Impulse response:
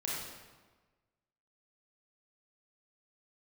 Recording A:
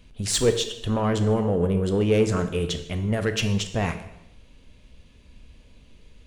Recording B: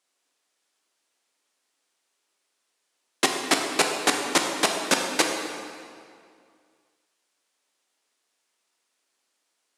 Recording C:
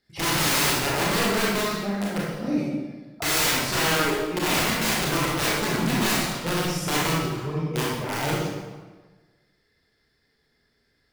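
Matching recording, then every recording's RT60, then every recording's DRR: C; 0.85, 2.2, 1.3 seconds; 8.0, 2.0, −5.5 decibels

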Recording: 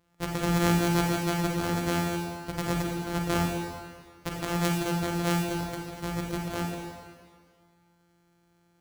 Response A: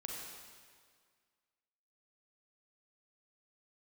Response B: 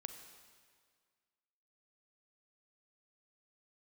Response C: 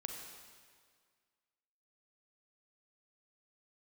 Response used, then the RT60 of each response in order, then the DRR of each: A; 1.9, 1.9, 1.9 seconds; −2.0, 7.0, 2.0 decibels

